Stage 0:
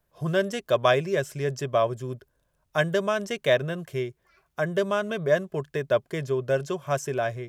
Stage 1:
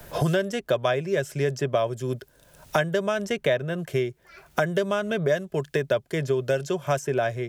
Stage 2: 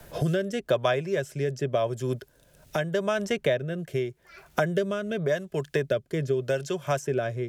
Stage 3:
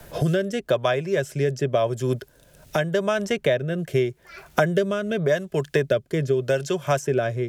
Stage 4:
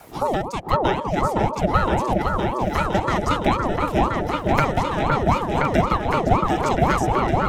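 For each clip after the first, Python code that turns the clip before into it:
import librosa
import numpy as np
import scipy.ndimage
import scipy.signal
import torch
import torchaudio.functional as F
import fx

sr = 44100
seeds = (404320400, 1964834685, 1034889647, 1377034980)

y1 = fx.notch(x, sr, hz=1100.0, q=8.3)
y1 = fx.band_squash(y1, sr, depth_pct=100)
y2 = fx.rotary(y1, sr, hz=0.85)
y3 = fx.rider(y2, sr, range_db=10, speed_s=0.5)
y3 = y3 * librosa.db_to_amplitude(4.5)
y4 = fx.echo_opening(y3, sr, ms=513, hz=750, octaves=2, feedback_pct=70, wet_db=0)
y4 = fx.ring_lfo(y4, sr, carrier_hz=480.0, swing_pct=60, hz=3.9)
y4 = y4 * librosa.db_to_amplitude(2.0)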